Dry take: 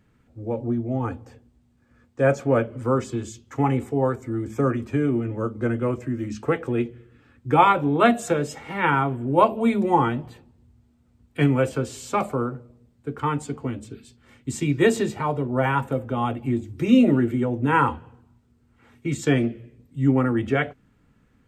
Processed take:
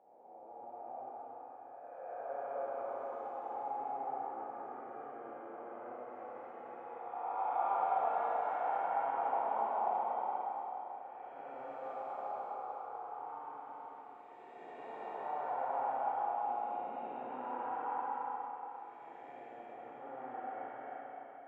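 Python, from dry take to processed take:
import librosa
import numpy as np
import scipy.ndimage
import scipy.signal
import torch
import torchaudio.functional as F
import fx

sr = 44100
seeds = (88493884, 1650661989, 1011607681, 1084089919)

y = fx.spec_blur(x, sr, span_ms=795.0)
y = fx.ladder_bandpass(y, sr, hz=800.0, resonance_pct=80)
y = fx.rev_schroeder(y, sr, rt60_s=3.5, comb_ms=32, drr_db=-5.0)
y = F.gain(torch.from_numpy(y), -4.0).numpy()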